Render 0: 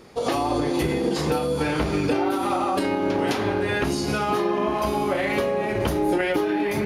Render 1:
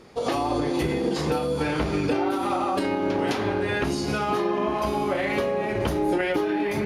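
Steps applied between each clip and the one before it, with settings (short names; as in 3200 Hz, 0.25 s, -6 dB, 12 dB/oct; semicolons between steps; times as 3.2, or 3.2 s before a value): high shelf 12000 Hz -9.5 dB; gain -1.5 dB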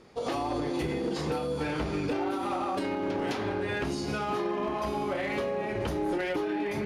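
Bessel low-pass 11000 Hz; hard clip -18.5 dBFS, distortion -20 dB; gain -5.5 dB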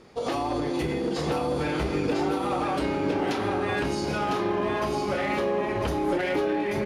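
echo 1.003 s -5 dB; gain +3 dB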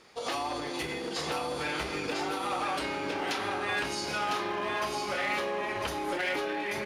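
tilt shelf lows -8 dB, about 650 Hz; gain -5.5 dB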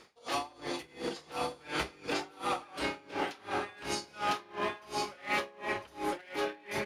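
dB-linear tremolo 2.8 Hz, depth 26 dB; gain +2 dB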